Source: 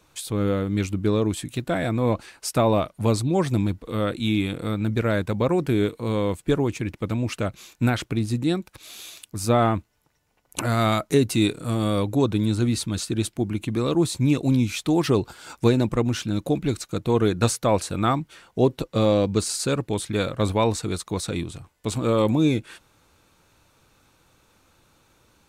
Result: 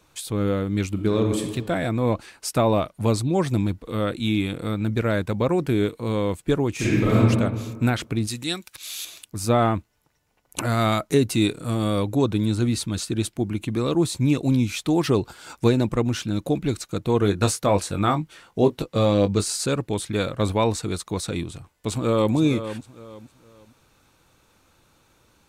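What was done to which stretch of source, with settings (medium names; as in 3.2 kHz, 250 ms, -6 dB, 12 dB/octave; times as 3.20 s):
0.89–1.44 s: reverb throw, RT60 1.3 s, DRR 4 dB
6.74–7.18 s: reverb throw, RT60 1.5 s, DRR -10.5 dB
8.27–9.05 s: tilt shelf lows -9.5 dB, about 1.2 kHz
17.19–19.66 s: doubling 20 ms -8 dB
21.89–22.34 s: echo throw 460 ms, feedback 30%, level -11 dB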